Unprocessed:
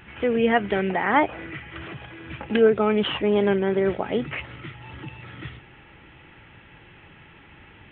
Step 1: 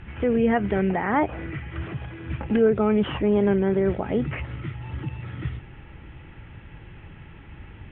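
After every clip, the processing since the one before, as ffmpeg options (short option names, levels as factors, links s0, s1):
-filter_complex "[0:a]acrossover=split=2900[s0][s1];[s1]acompressor=threshold=0.00316:ratio=4:attack=1:release=60[s2];[s0][s2]amix=inputs=2:normalize=0,aemphasis=mode=reproduction:type=bsi,asplit=2[s3][s4];[s4]alimiter=limit=0.158:level=0:latency=1:release=97,volume=1.12[s5];[s3][s5]amix=inputs=2:normalize=0,volume=0.447"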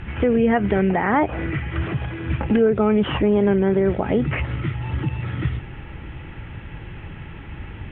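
-af "acompressor=threshold=0.0501:ratio=2,volume=2.51"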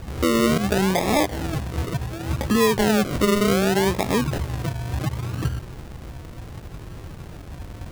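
-af "acrusher=samples=42:mix=1:aa=0.000001:lfo=1:lforange=25.2:lforate=0.68,volume=0.841"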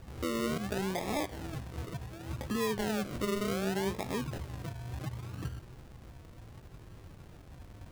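-af "flanger=delay=7.6:depth=3.1:regen=83:speed=1.2:shape=sinusoidal,volume=0.355"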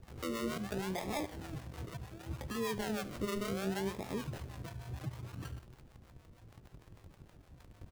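-filter_complex "[0:a]asplit=2[s0][s1];[s1]acrusher=bits=6:mix=0:aa=0.000001,volume=0.422[s2];[s0][s2]amix=inputs=2:normalize=0,acrossover=split=520[s3][s4];[s3]aeval=exprs='val(0)*(1-0.7/2+0.7/2*cos(2*PI*6.5*n/s))':c=same[s5];[s4]aeval=exprs='val(0)*(1-0.7/2-0.7/2*cos(2*PI*6.5*n/s))':c=same[s6];[s5][s6]amix=inputs=2:normalize=0,aecho=1:1:73:0.133,volume=0.631"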